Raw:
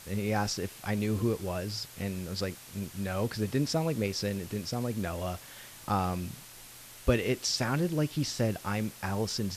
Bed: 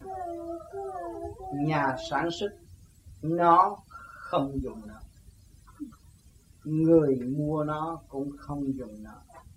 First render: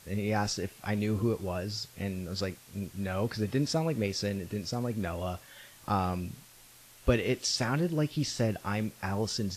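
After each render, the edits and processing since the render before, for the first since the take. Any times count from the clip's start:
noise reduction from a noise print 6 dB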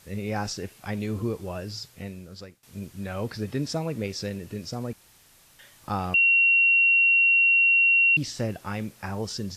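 0:01.83–0:02.63: fade out, to −19 dB
0:04.93–0:05.59: fill with room tone
0:06.14–0:08.17: beep over 2,740 Hz −16 dBFS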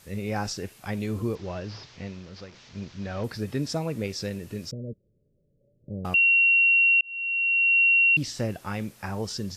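0:01.35–0:03.24: linear delta modulator 32 kbit/s, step −44.5 dBFS
0:04.71–0:06.05: Chebyshev low-pass with heavy ripple 600 Hz, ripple 6 dB
0:07.01–0:07.80: fade in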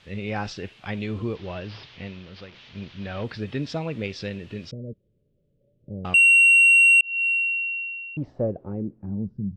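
low-pass filter sweep 3,200 Hz → 180 Hz, 0:07.11–0:09.37
soft clipping −10.5 dBFS, distortion −18 dB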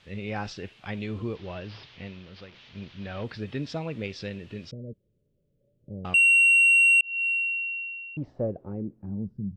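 level −3.5 dB

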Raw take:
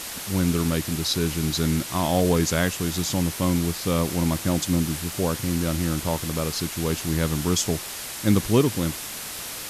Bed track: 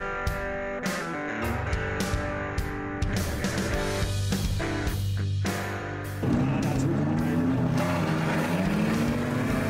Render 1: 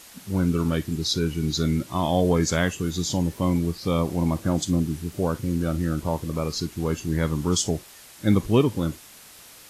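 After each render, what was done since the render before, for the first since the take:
noise reduction from a noise print 13 dB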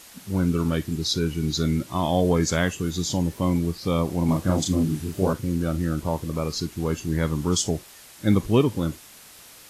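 0:04.25–0:05.33: double-tracking delay 32 ms −2 dB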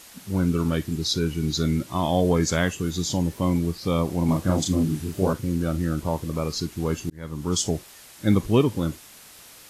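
0:07.10–0:07.63: fade in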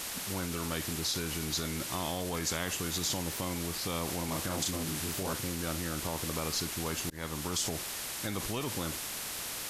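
brickwall limiter −19.5 dBFS, peak gain reduction 11.5 dB
every bin compressed towards the loudest bin 2 to 1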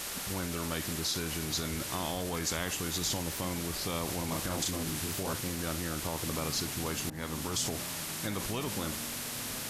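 mix in bed track −20 dB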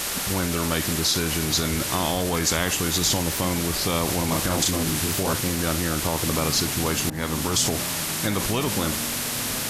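level +10.5 dB

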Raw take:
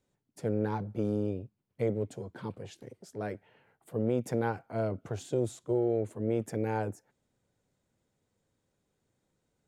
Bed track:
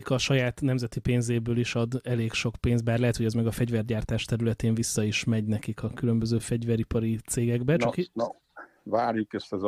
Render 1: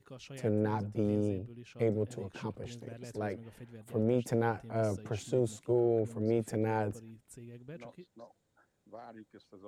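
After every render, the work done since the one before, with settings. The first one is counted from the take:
mix in bed track −23.5 dB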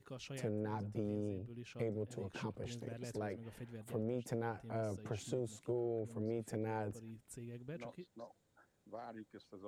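downward compressor 2.5 to 1, threshold −40 dBFS, peak gain reduction 10.5 dB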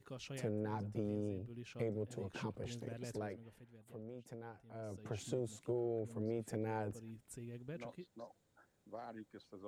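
0:03.12–0:05.21: duck −11 dB, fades 0.47 s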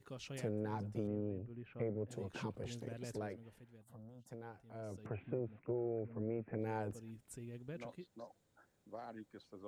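0:01.07–0:02.09: low-pass filter 2,200 Hz 24 dB per octave
0:03.83–0:04.31: phaser with its sweep stopped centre 980 Hz, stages 4
0:05.06–0:06.59: Chebyshev low-pass filter 2,500 Hz, order 5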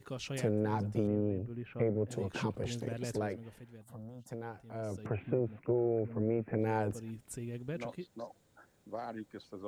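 level +8 dB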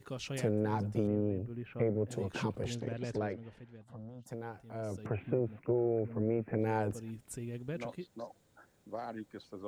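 0:02.75–0:04.23: low-pass filter 4,400 Hz

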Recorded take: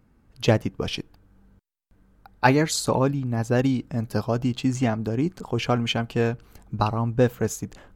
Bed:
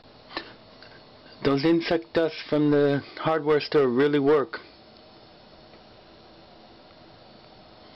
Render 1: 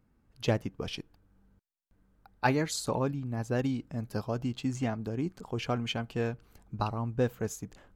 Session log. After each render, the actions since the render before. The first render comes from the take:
level −8.5 dB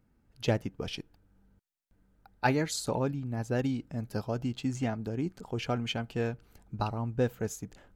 notch filter 1,100 Hz, Q 8.8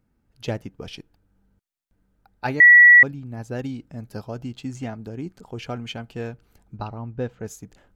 0:02.60–0:03.03: beep over 1,940 Hz −6.5 dBFS
0:06.77–0:07.46: high-frequency loss of the air 120 metres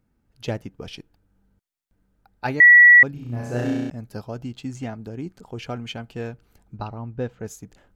0:03.11–0:03.90: flutter between parallel walls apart 5.7 metres, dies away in 1.4 s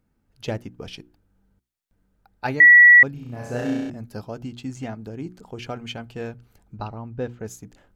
mains-hum notches 60/120/180/240/300/360 Hz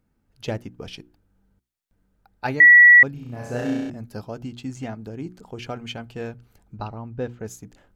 no processing that can be heard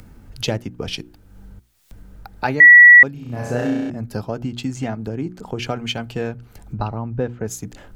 upward compression, threshold −15 dBFS
multiband upward and downward expander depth 40%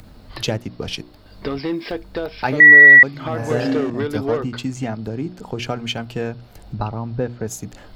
mix in bed −3 dB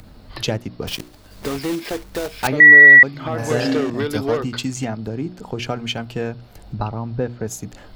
0:00.87–0:02.49: one scale factor per block 3 bits
0:03.38–0:04.85: high-shelf EQ 2,700 Hz +8.5 dB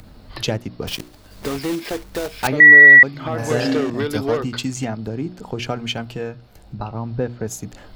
0:06.16–0:06.95: tuned comb filter 67 Hz, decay 0.22 s

